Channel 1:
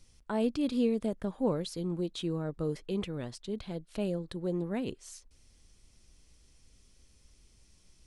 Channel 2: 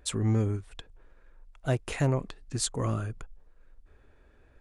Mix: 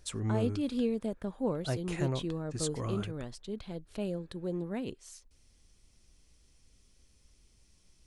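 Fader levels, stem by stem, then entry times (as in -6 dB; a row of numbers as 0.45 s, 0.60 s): -2.5 dB, -6.5 dB; 0.00 s, 0.00 s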